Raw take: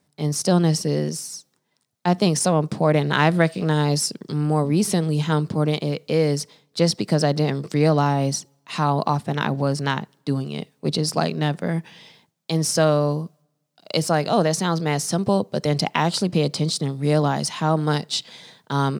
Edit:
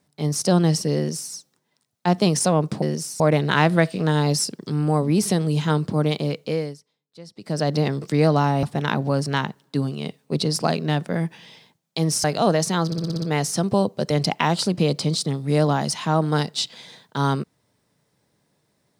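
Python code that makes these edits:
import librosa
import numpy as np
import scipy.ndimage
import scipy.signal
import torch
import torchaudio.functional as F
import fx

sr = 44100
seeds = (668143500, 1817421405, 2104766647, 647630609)

y = fx.edit(x, sr, fx.duplicate(start_s=0.96, length_s=0.38, to_s=2.82),
    fx.fade_down_up(start_s=5.99, length_s=1.39, db=-23.0, fade_s=0.41),
    fx.cut(start_s=8.25, length_s=0.91),
    fx.cut(start_s=12.77, length_s=1.38),
    fx.stutter(start_s=14.77, slice_s=0.06, count=7), tone=tone)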